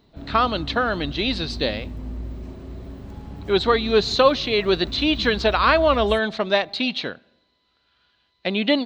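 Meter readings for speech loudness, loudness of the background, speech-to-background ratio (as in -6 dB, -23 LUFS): -21.0 LUFS, -35.5 LUFS, 14.5 dB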